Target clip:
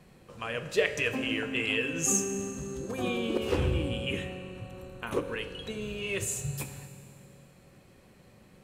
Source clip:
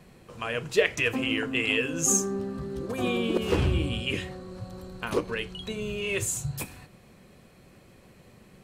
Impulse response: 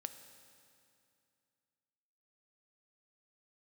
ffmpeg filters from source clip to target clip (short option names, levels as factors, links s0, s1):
-filter_complex "[0:a]asettb=1/sr,asplit=3[s0][s1][s2];[s0]atrim=end=3.584[s3];[s1]atrim=start=3.58:end=5.4,asetpts=PTS-STARTPTS,afade=t=in:d=0.004:c=qsin,afade=t=out:st=1.816:d=0.004:c=qsin,equalizer=f=4800:t=o:w=0.35:g=-13.5[s4];[s2]atrim=start=5.396[s5];[s3][s4]acrossfade=d=0.004:c1=hsin:c2=qsin[s6];[s6][s5]acrossfade=d=0.004:c1=qsin:c2=hsin[s7];[1:a]atrim=start_sample=2205[s8];[s7][s8]afir=irnorm=-1:irlink=0"